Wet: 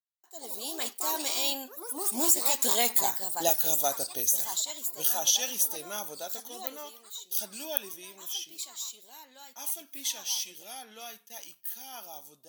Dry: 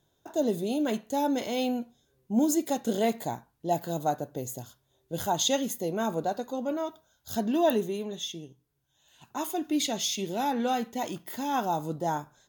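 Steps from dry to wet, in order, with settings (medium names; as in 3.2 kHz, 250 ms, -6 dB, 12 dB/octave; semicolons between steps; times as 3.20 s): Doppler pass-by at 3.18 s, 29 m/s, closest 17 m; gate with hold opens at -52 dBFS; differentiator; compression 3:1, threshold -46 dBFS, peak gain reduction 12 dB; ever faster or slower copies 136 ms, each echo +3 st, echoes 3, each echo -6 dB; level rider gain up to 16.5 dB; trim +7 dB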